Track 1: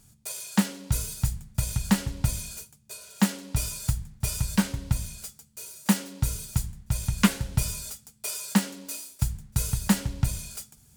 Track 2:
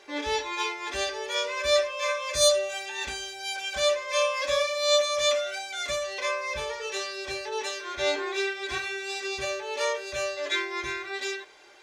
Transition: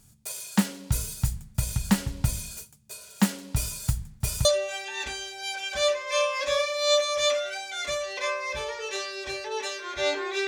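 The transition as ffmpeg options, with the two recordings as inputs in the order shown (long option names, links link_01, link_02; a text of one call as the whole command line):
ffmpeg -i cue0.wav -i cue1.wav -filter_complex "[0:a]apad=whole_dur=10.47,atrim=end=10.47,atrim=end=4.452[link_01];[1:a]atrim=start=2.458:end=8.48[link_02];[link_01][link_02]acrossfade=duration=0.004:curve1=hsin:curve2=hsin" out.wav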